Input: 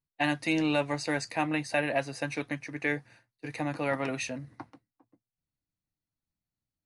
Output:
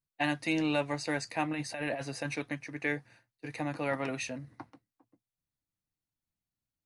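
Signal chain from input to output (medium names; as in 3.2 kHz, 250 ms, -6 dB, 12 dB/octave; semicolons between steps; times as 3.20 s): 1.53–2.36 s: compressor with a negative ratio -32 dBFS, ratio -1; trim -2.5 dB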